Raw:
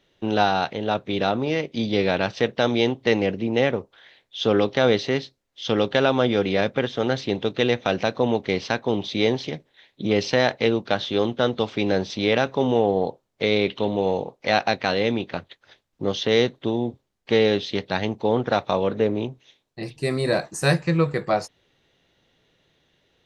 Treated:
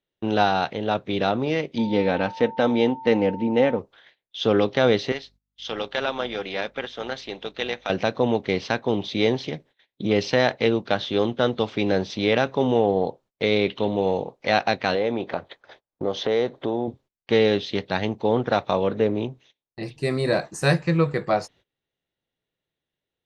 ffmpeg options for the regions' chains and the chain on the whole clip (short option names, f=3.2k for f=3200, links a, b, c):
-filter_complex "[0:a]asettb=1/sr,asplit=3[a][b][c];[a]atrim=end=1.784[d];[b]atrim=start=1.78:end=3.79,asetpts=PTS-STARTPTS,afade=t=in:d=0.004:c=qsin,afade=t=out:st=2.006:d=0.004:c=qsin,highshelf=f=2.8k:g=-10,aecho=1:1:3.9:0.45,atrim=end_sample=88641,aeval=exprs='val(0)+0.0178*sin(2*PI*900*n/s)':c=same[e];[c]atrim=start=3.786[f];[d][e]acrossfade=d=0.004:c1=hsin:c2=qsin[g];[g][f]acrossfade=d=0.004:c1=qsin:c2=hsin,asettb=1/sr,asplit=3[h][i][j];[h]atrim=end=5.124[k];[i]atrim=start=5.12:end=7.9,asetpts=PTS-STARTPTS,afade=t=in:d=0.004:c=qsin,afade=t=out:st=2.776:d=0.004:c=qsin,highpass=f=850:p=1,tremolo=f=290:d=0.462,aeval=exprs='val(0)+0.000708*(sin(2*PI*50*n/s)+sin(2*PI*2*50*n/s)/2+sin(2*PI*3*50*n/s)/3+sin(2*PI*4*50*n/s)/4+sin(2*PI*5*50*n/s)/5)':c=same[l];[j]atrim=start=7.896[m];[k][l]acrossfade=d=0.004:c1=hsin:c2=qsin[n];[n][m]acrossfade=d=0.004:c1=qsin:c2=hsin,asettb=1/sr,asplit=3[o][p][q];[o]atrim=end=14.954[r];[p]atrim=start=14.95:end=16.88,asetpts=PTS-STARTPTS,afade=t=in:d=0.004:c=qsin,afade=t=out:st=1.926:d=0.004:c=qsin,equalizer=f=690:w=0.54:g=11.5,bandreject=f=2.8k:w=20,acompressor=threshold=-27dB:ratio=2:attack=3.2:release=140:knee=1:detection=peak[s];[q]atrim=start=16.876[t];[r][s]acrossfade=d=0.004:c1=hsin:c2=qsin[u];[u][t]acrossfade=d=0.004:c1=qsin:c2=hsin,agate=range=-21dB:threshold=-49dB:ratio=16:detection=peak,highshelf=f=7.6k:g=-7"